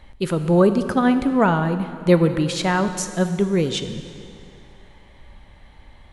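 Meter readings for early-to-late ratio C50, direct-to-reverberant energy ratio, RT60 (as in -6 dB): 10.0 dB, 9.0 dB, 2.5 s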